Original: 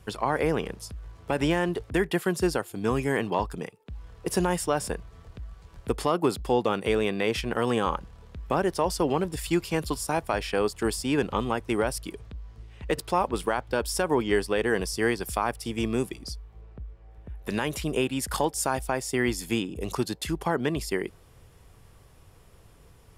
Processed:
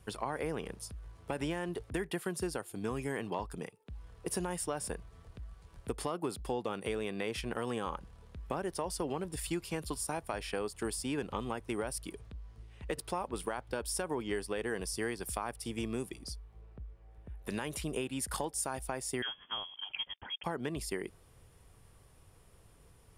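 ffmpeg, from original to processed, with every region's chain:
-filter_complex "[0:a]asettb=1/sr,asplit=3[s0][s1][s2];[s0]atrim=end=19.224[s3];[s1]atrim=start=19.22:end=20.44,asetpts=PTS-STARTPTS,afade=t=in:d=0.004:c=qsin,afade=t=out:st=1.216:d=0.004:c=qsin,highpass=f=330:w=0.5412,highpass=f=330:w=1.3066,aeval=exprs='sgn(val(0))*max(abs(val(0))-0.00133,0)':c=same,lowpass=f=3100:t=q:w=0.5098,lowpass=f=3100:t=q:w=0.6013,lowpass=f=3100:t=q:w=0.9,lowpass=f=3100:t=q:w=2.563,afreqshift=-3600[s4];[s2]atrim=start=20.436[s5];[s3][s4]acrossfade=d=0.004:c1=hsin:c2=qsin[s6];[s6][s5]acrossfade=d=0.004:c1=qsin:c2=hsin,equalizer=f=9400:w=5.2:g=8.5,acompressor=threshold=0.0501:ratio=3,volume=0.473"

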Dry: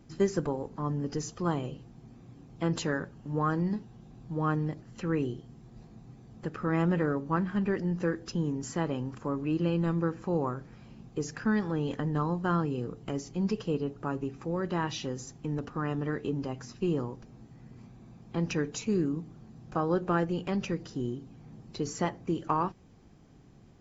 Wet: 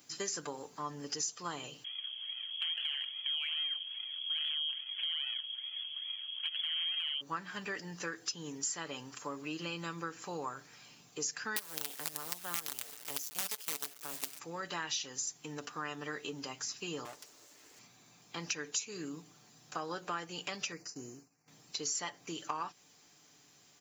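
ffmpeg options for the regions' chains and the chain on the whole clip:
-filter_complex "[0:a]asettb=1/sr,asplit=3[s0][s1][s2];[s0]atrim=end=1.844[s3];[s1]atrim=start=1.84:end=7.21,asetpts=PTS-STARTPTS,afade=t=in:d=0.004:c=qsin,afade=t=out:st=5.366:d=0.004:c=qsin,acrusher=samples=26:mix=1:aa=0.000001:lfo=1:lforange=26:lforate=2.4,lowpass=f=2900:t=q:w=0.5098,lowpass=f=2900:t=q:w=0.6013,lowpass=f=2900:t=q:w=0.9,lowpass=f=2900:t=q:w=2.563,afreqshift=-3400,acompressor=threshold=0.0178:ratio=6:attack=3.2:release=140:knee=1:detection=peak[s4];[s2]atrim=start=7.206[s5];[s3][s4]acrossfade=d=0.004:c1=hsin:c2=qsin[s6];[s6][s5]acrossfade=d=0.004:c1=qsin:c2=hsin,asettb=1/sr,asplit=3[s7][s8][s9];[s7]atrim=end=11.564[s10];[s8]atrim=start=11.56:end=14.39,asetpts=PTS-STARTPTS,afade=t=in:d=0.004:c=qsin,afade=t=out:st=2.826:d=0.004:c=qsin,acrossover=split=470|3000[s11][s12][s13];[s12]acompressor=threshold=0.0112:ratio=2:attack=3.2:release=140:knee=2.83:detection=peak[s14];[s11][s14][s13]amix=inputs=3:normalize=0,acrusher=bits=5:dc=4:mix=0:aa=0.000001[s15];[s9]atrim=start=14.386[s16];[s10][s15]acrossfade=d=0.004:c1=hsin:c2=qsin[s17];[s17][s16]acrossfade=d=0.004:c1=qsin:c2=hsin,asettb=1/sr,asplit=3[s18][s19][s20];[s18]atrim=end=17.054[s21];[s19]atrim=start=17.05:end=17.79,asetpts=PTS-STARTPTS,afade=t=in:d=0.004:c=qsin,afade=t=out:st=0.736:d=0.004:c=qsin,highpass=71,highshelf=f=5200:g=6.5,aeval=exprs='abs(val(0))':c=same[s22];[s20]atrim=start=17.786[s23];[s21][s22]acrossfade=d=0.004:c1=hsin:c2=qsin[s24];[s24][s23]acrossfade=d=0.004:c1=qsin:c2=hsin,asettb=1/sr,asplit=3[s25][s26][s27];[s25]atrim=end=20.724[s28];[s26]atrim=start=20.72:end=21.48,asetpts=PTS-STARTPTS,afade=t=in:d=0.004:c=qsin,afade=t=out:st=0.756:d=0.004:c=qsin,agate=range=0.0224:threshold=0.00794:ratio=3:release=100:detection=peak,asuperstop=centerf=3400:order=4:qfactor=1.4[s29];[s27]atrim=start=21.476[s30];[s28][s29]acrossfade=d=0.004:c1=hsin:c2=qsin[s31];[s31][s30]acrossfade=d=0.004:c1=qsin:c2=hsin,aderivative,aecho=1:1:6.8:0.4,acompressor=threshold=0.00316:ratio=3,volume=5.31"

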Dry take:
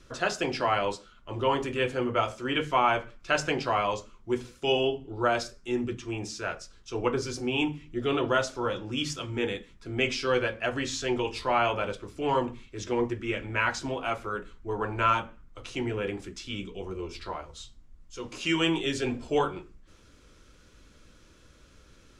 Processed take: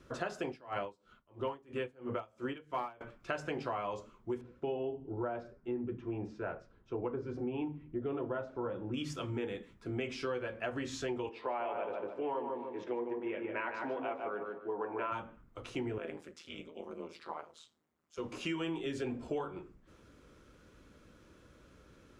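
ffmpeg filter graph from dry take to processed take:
-filter_complex "[0:a]asettb=1/sr,asplit=3[s0][s1][s2];[s0]atrim=end=0.474[s3];[s1]atrim=start=0.47:end=3.01,asetpts=PTS-STARTPTS,afade=t=in:d=0.004:c=qsin,afade=t=out:st=2.536:d=0.004:c=qsin,asoftclip=type=hard:threshold=0.158,aeval=exprs='val(0)*pow(10,-27*(0.5-0.5*cos(2*PI*3*n/s))/20)':c=same[s4];[s2]atrim=start=3.006[s5];[s3][s4]acrossfade=d=0.004:c1=hsin:c2=qsin[s6];[s6][s5]acrossfade=d=0.004:c1=qsin:c2=hsin,asettb=1/sr,asplit=3[s7][s8][s9];[s7]atrim=end=4.414[s10];[s8]atrim=start=4.41:end=8.94,asetpts=PTS-STARTPTS,afade=t=in:d=0.004:c=qsin,afade=t=out:st=4.526:d=0.004:c=qsin,lowpass=f=1600:p=1,aemphasis=mode=reproduction:type=75kf,bandreject=f=1200:w=17[s11];[s9]atrim=start=8.936[s12];[s10][s11]acrossfade=d=0.004:c1=hsin:c2=qsin[s13];[s13][s12]acrossfade=d=0.004:c1=qsin:c2=hsin,asettb=1/sr,asplit=3[s14][s15][s16];[s14]atrim=end=11.294[s17];[s15]atrim=start=11.29:end=15.12,asetpts=PTS-STARTPTS,afade=t=in:d=0.004:c=qsin,afade=t=out:st=3.826:d=0.004:c=qsin,highpass=320,lowpass=2500,equalizer=f=1300:w=3.3:g=-6,asplit=2[s18][s19];[s19]adelay=149,lowpass=f=1900:p=1,volume=0.596,asplit=2[s20][s21];[s21]adelay=149,lowpass=f=1900:p=1,volume=0.33,asplit=2[s22][s23];[s23]adelay=149,lowpass=f=1900:p=1,volume=0.33,asplit=2[s24][s25];[s25]adelay=149,lowpass=f=1900:p=1,volume=0.33[s26];[s18][s20][s22][s24][s26]amix=inputs=5:normalize=0,atrim=end_sample=168903[s27];[s16]atrim=start=15.116[s28];[s17][s27]acrossfade=d=0.004:c1=hsin:c2=qsin[s29];[s29][s28]acrossfade=d=0.004:c1=qsin:c2=hsin,asettb=1/sr,asplit=3[s30][s31][s32];[s30]atrim=end=15.984[s33];[s31]atrim=start=15.98:end=18.18,asetpts=PTS-STARTPTS,afade=t=in:d=0.004:c=qsin,afade=t=out:st=2.196:d=0.004:c=qsin,highpass=180,lowshelf=f=280:g=-11,tremolo=f=160:d=0.947[s34];[s32]atrim=start=18.176[s35];[s33][s34]acrossfade=d=0.004:c1=hsin:c2=qsin[s36];[s36][s35]acrossfade=d=0.004:c1=qsin:c2=hsin,highpass=f=110:p=1,equalizer=f=5700:t=o:w=2.8:g=-11,acompressor=threshold=0.0178:ratio=6,volume=1.12"

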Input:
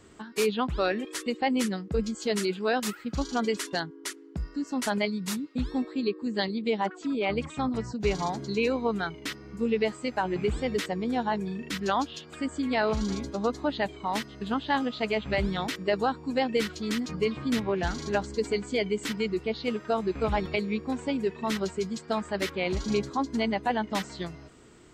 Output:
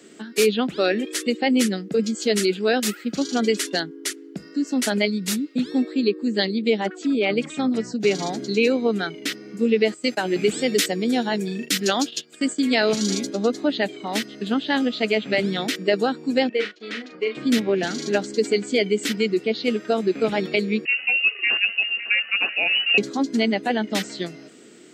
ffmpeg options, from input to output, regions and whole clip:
-filter_complex "[0:a]asettb=1/sr,asplit=3[s0][s1][s2];[s0]atrim=end=9.944[s3];[s1]atrim=start=9.94:end=13.27,asetpts=PTS-STARTPTS,afade=t=in:d=0.004:c=qsin,afade=t=out:st=3.326:d=0.004:c=qsin,agate=range=0.2:threshold=0.00794:ratio=16:release=100:detection=peak,highshelf=f=4500:g=11.5[s4];[s2]atrim=start=13.266[s5];[s3][s4]acrossfade=d=0.004:c1=hsin:c2=qsin[s6];[s6][s5]acrossfade=d=0.004:c1=qsin:c2=hsin,asettb=1/sr,asplit=3[s7][s8][s9];[s7]atrim=end=16.494[s10];[s8]atrim=start=16.49:end=17.35,asetpts=PTS-STARTPTS,afade=t=in:d=0.004:c=qsin,afade=t=out:st=0.856:d=0.004:c=qsin,agate=range=0.0224:threshold=0.0251:ratio=3:release=100:detection=peak,highpass=540,lowpass=2500,asplit=2[s11][s12];[s12]adelay=39,volume=0.447[s13];[s11][s13]amix=inputs=2:normalize=0,atrim=end_sample=37926[s14];[s9]atrim=start=17.346[s15];[s10][s14]acrossfade=d=0.004:c1=hsin:c2=qsin[s16];[s16][s15]acrossfade=d=0.004:c1=qsin:c2=hsin,asettb=1/sr,asplit=3[s17][s18][s19];[s17]atrim=end=20.854[s20];[s18]atrim=start=20.85:end=22.98,asetpts=PTS-STARTPTS,afade=t=in:d=0.004:c=qsin,afade=t=out:st=2.126:d=0.004:c=qsin,aecho=1:1:380|553:0.106|0.211,atrim=end_sample=93933,lowpass=f=2600:t=q:w=0.5098,lowpass=f=2600:t=q:w=0.6013,lowpass=f=2600:t=q:w=0.9,lowpass=f=2600:t=q:w=2.563,afreqshift=-3000[s21];[s19]atrim=start=22.976[s22];[s20][s21]acrossfade=d=0.004:c1=hsin:c2=qsin[s23];[s23][s22]acrossfade=d=0.004:c1=qsin:c2=hsin,highpass=f=200:w=0.5412,highpass=f=200:w=1.3066,equalizer=f=1000:t=o:w=0.77:g=-14.5,volume=2.82"

